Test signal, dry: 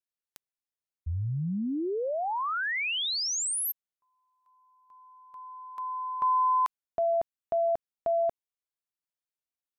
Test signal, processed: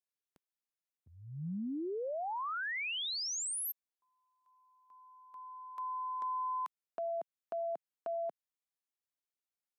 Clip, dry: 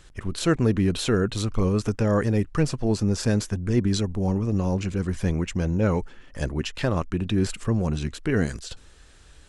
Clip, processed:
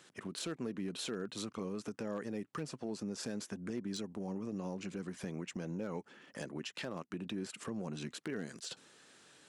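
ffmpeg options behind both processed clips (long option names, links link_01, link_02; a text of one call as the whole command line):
ffmpeg -i in.wav -af "highpass=frequency=170:width=0.5412,highpass=frequency=170:width=1.3066,acompressor=threshold=-31dB:ratio=4:attack=1.4:release=212:knee=1:detection=rms,aeval=exprs='0.0501*(abs(mod(val(0)/0.0501+3,4)-2)-1)':channel_layout=same,volume=-4.5dB" out.wav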